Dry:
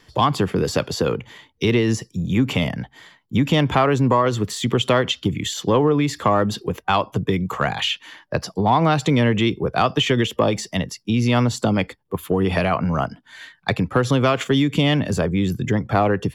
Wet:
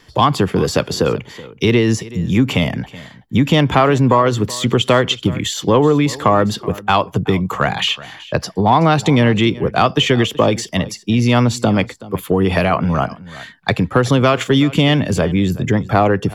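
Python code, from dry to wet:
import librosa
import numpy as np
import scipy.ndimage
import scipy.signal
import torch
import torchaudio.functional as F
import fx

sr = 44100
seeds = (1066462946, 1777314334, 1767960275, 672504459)

y = x + 10.0 ** (-19.0 / 20.0) * np.pad(x, (int(376 * sr / 1000.0), 0))[:len(x)]
y = y * librosa.db_to_amplitude(4.5)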